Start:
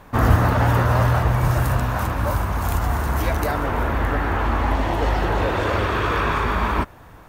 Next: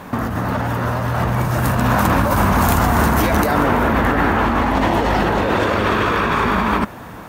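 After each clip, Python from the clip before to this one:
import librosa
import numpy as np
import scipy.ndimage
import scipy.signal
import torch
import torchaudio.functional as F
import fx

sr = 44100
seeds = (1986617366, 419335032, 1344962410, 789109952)

y = fx.highpass(x, sr, hz=140.0, slope=6)
y = fx.peak_eq(y, sr, hz=210.0, db=8.0, octaves=0.63)
y = fx.over_compress(y, sr, threshold_db=-25.0, ratio=-1.0)
y = y * 10.0 ** (8.0 / 20.0)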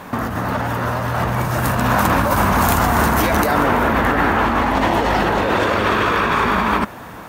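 y = fx.low_shelf(x, sr, hz=360.0, db=-4.5)
y = y * 10.0 ** (1.5 / 20.0)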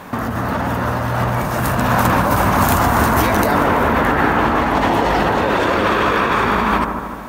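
y = fx.echo_wet_lowpass(x, sr, ms=150, feedback_pct=55, hz=1300.0, wet_db=-5.5)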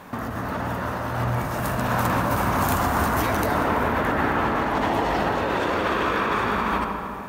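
y = fx.rev_freeverb(x, sr, rt60_s=2.4, hf_ratio=0.65, predelay_ms=45, drr_db=7.0)
y = y * 10.0 ** (-8.0 / 20.0)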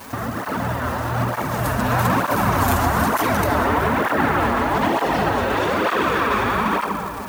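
y = fx.dmg_noise_colour(x, sr, seeds[0], colour='violet', level_db=-50.0)
y = fx.dmg_crackle(y, sr, seeds[1], per_s=390.0, level_db=-32.0)
y = fx.flanger_cancel(y, sr, hz=1.1, depth_ms=7.0)
y = y * 10.0 ** (6.5 / 20.0)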